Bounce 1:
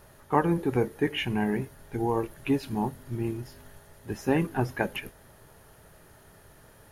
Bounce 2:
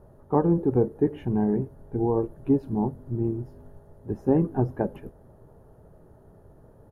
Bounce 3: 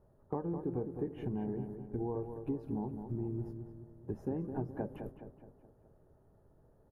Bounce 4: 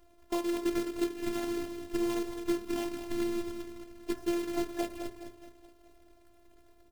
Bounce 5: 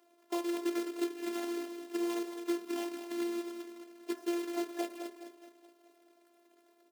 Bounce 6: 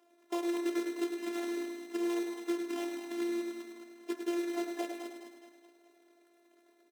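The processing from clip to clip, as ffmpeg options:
ffmpeg -i in.wav -af "firequalizer=gain_entry='entry(450,0);entry(2200,-27);entry(12000,-23)':delay=0.05:min_phase=1,volume=4dB" out.wav
ffmpeg -i in.wav -filter_complex "[0:a]agate=range=-9dB:threshold=-40dB:ratio=16:detection=peak,acompressor=threshold=-29dB:ratio=6,asplit=2[link_01][link_02];[link_02]adelay=210,lowpass=frequency=2400:poles=1,volume=-7.5dB,asplit=2[link_03][link_04];[link_04]adelay=210,lowpass=frequency=2400:poles=1,volume=0.5,asplit=2[link_05][link_06];[link_06]adelay=210,lowpass=frequency=2400:poles=1,volume=0.5,asplit=2[link_07][link_08];[link_08]adelay=210,lowpass=frequency=2400:poles=1,volume=0.5,asplit=2[link_09][link_10];[link_10]adelay=210,lowpass=frequency=2400:poles=1,volume=0.5,asplit=2[link_11][link_12];[link_12]adelay=210,lowpass=frequency=2400:poles=1,volume=0.5[link_13];[link_03][link_05][link_07][link_09][link_11][link_13]amix=inputs=6:normalize=0[link_14];[link_01][link_14]amix=inputs=2:normalize=0,volume=-5dB" out.wav
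ffmpeg -i in.wav -af "acrusher=bits=2:mode=log:mix=0:aa=0.000001,afftfilt=real='hypot(re,im)*cos(PI*b)':imag='0':win_size=512:overlap=0.75,bandreject=frequency=51.98:width_type=h:width=4,bandreject=frequency=103.96:width_type=h:width=4,bandreject=frequency=155.94:width_type=h:width=4,bandreject=frequency=207.92:width_type=h:width=4,bandreject=frequency=259.9:width_type=h:width=4,bandreject=frequency=311.88:width_type=h:width=4,bandreject=frequency=363.86:width_type=h:width=4,bandreject=frequency=415.84:width_type=h:width=4,bandreject=frequency=467.82:width_type=h:width=4,bandreject=frequency=519.8:width_type=h:width=4,bandreject=frequency=571.78:width_type=h:width=4,bandreject=frequency=623.76:width_type=h:width=4,bandreject=frequency=675.74:width_type=h:width=4,bandreject=frequency=727.72:width_type=h:width=4,bandreject=frequency=779.7:width_type=h:width=4,bandreject=frequency=831.68:width_type=h:width=4,bandreject=frequency=883.66:width_type=h:width=4,bandreject=frequency=935.64:width_type=h:width=4,bandreject=frequency=987.62:width_type=h:width=4,bandreject=frequency=1039.6:width_type=h:width=4,bandreject=frequency=1091.58:width_type=h:width=4,bandreject=frequency=1143.56:width_type=h:width=4,bandreject=frequency=1195.54:width_type=h:width=4,bandreject=frequency=1247.52:width_type=h:width=4,bandreject=frequency=1299.5:width_type=h:width=4,bandreject=frequency=1351.48:width_type=h:width=4,bandreject=frequency=1403.46:width_type=h:width=4,bandreject=frequency=1455.44:width_type=h:width=4,bandreject=frequency=1507.42:width_type=h:width=4,bandreject=frequency=1559.4:width_type=h:width=4,bandreject=frequency=1611.38:width_type=h:width=4,bandreject=frequency=1663.36:width_type=h:width=4,bandreject=frequency=1715.34:width_type=h:width=4,bandreject=frequency=1767.32:width_type=h:width=4,bandreject=frequency=1819.3:width_type=h:width=4,bandreject=frequency=1871.28:width_type=h:width=4,volume=8.5dB" out.wav
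ffmpeg -i in.wav -af "highpass=frequency=280:width=0.5412,highpass=frequency=280:width=1.3066,volume=-2dB" out.wav
ffmpeg -i in.wav -af "highshelf=frequency=9700:gain=-6,bandreject=frequency=4400:width=14,aecho=1:1:104|208|312|416|520|624:0.473|0.237|0.118|0.0591|0.0296|0.0148" out.wav

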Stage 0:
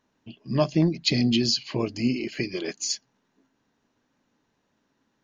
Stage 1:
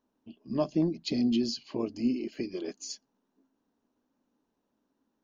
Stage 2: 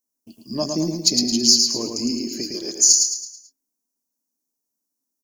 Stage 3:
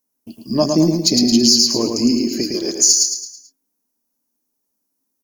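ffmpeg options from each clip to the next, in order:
ffmpeg -i in.wav -af "equalizer=frequency=125:width_type=o:width=1:gain=-11,equalizer=frequency=250:width_type=o:width=1:gain=5,equalizer=frequency=2000:width_type=o:width=1:gain=-10,equalizer=frequency=4000:width_type=o:width=1:gain=-4,equalizer=frequency=8000:width_type=o:width=1:gain=-6,volume=-5.5dB" out.wav
ffmpeg -i in.wav -filter_complex "[0:a]agate=range=-20dB:threshold=-59dB:ratio=16:detection=peak,aexciter=amount=12.5:drive=9.2:freq=5000,asplit=2[link_01][link_02];[link_02]aecho=0:1:109|218|327|436|545:0.596|0.244|0.1|0.0411|0.0168[link_03];[link_01][link_03]amix=inputs=2:normalize=0,volume=3dB" out.wav
ffmpeg -i in.wav -af "aemphasis=mode=reproduction:type=cd,aexciter=amount=2.2:drive=6:freq=10000,alimiter=level_in=9.5dB:limit=-1dB:release=50:level=0:latency=1,volume=-1dB" out.wav

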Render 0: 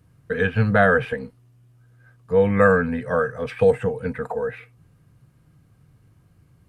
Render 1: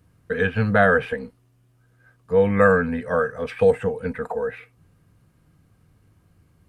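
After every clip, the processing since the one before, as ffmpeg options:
ffmpeg -i in.wav -af "equalizer=frequency=130:width=5.5:gain=-11.5" out.wav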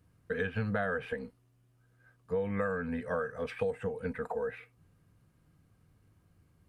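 ffmpeg -i in.wav -af "acompressor=threshold=-21dB:ratio=10,volume=-7.5dB" out.wav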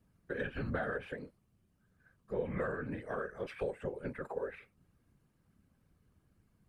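ffmpeg -i in.wav -af "aeval=exprs='0.126*(cos(1*acos(clip(val(0)/0.126,-1,1)))-cos(1*PI/2))+0.00562*(cos(3*acos(clip(val(0)/0.126,-1,1)))-cos(3*PI/2))':channel_layout=same,afftfilt=real='hypot(re,im)*cos(2*PI*random(0))':imag='hypot(re,im)*sin(2*PI*random(1))':win_size=512:overlap=0.75,volume=2.5dB" out.wav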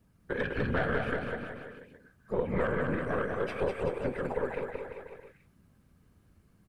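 ffmpeg -i in.wav -filter_complex "[0:a]aeval=exprs='(tanh(22.4*val(0)+0.65)-tanh(0.65))/22.4':channel_layout=same,asplit=2[link_01][link_02];[link_02]aecho=0:1:200|380|542|687.8|819:0.631|0.398|0.251|0.158|0.1[link_03];[link_01][link_03]amix=inputs=2:normalize=0,volume=8.5dB" out.wav

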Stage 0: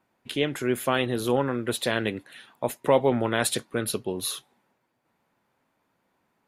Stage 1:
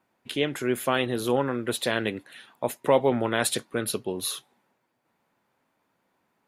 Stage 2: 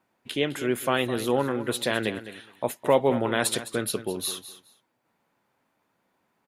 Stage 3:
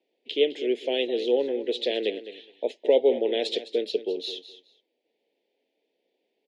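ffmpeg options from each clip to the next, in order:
ffmpeg -i in.wav -af "lowshelf=frequency=97:gain=-6" out.wav
ffmpeg -i in.wav -af "aecho=1:1:209|418:0.211|0.038" out.wav
ffmpeg -i in.wav -af "asuperstop=centerf=1200:order=4:qfactor=0.68,highpass=frequency=310:width=0.5412,highpass=frequency=310:width=1.3066,equalizer=frequency=450:width_type=q:width=4:gain=8,equalizer=frequency=1500:width_type=q:width=4:gain=-6,equalizer=frequency=3200:width_type=q:width=4:gain=4,lowpass=frequency=4700:width=0.5412,lowpass=frequency=4700:width=1.3066" out.wav

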